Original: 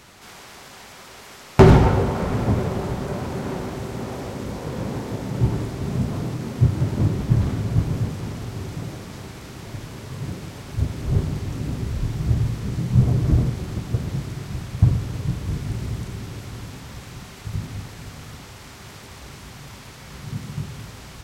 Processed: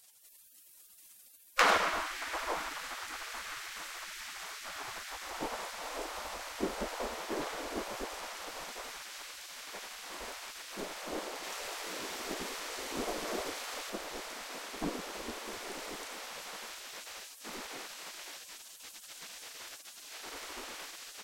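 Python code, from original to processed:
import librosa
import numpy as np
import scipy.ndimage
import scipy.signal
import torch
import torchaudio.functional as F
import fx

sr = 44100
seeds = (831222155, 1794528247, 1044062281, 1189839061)

y = fx.spec_gate(x, sr, threshold_db=-20, keep='weak')
y = fx.tilt_shelf(y, sr, db=-3.5, hz=760.0, at=(11.43, 13.9))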